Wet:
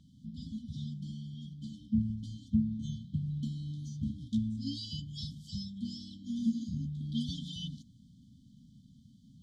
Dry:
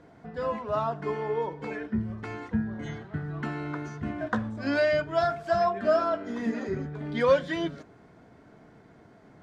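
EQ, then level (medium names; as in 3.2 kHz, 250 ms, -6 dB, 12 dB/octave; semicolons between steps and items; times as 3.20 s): brick-wall FIR band-stop 270–3000 Hz; 0.0 dB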